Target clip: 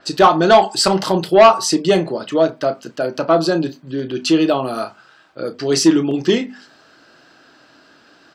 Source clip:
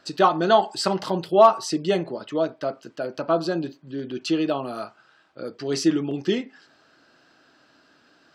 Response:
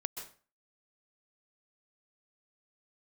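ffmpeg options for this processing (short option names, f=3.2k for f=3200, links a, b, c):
-filter_complex "[0:a]bandreject=f=50:t=h:w=6,bandreject=f=100:t=h:w=6,bandreject=f=150:t=h:w=6,bandreject=f=200:t=h:w=6,bandreject=f=250:t=h:w=6,asplit=2[a][b];[b]aeval=exprs='0.708*sin(PI/2*2.51*val(0)/0.708)':c=same,volume=-10dB[c];[a][c]amix=inputs=2:normalize=0,asplit=2[d][e];[e]adelay=31,volume=-13dB[f];[d][f]amix=inputs=2:normalize=0,adynamicequalizer=threshold=0.0141:dfrequency=5200:dqfactor=0.7:tfrequency=5200:tqfactor=0.7:attack=5:release=100:ratio=0.375:range=2.5:mode=boostabove:tftype=highshelf,volume=1.5dB"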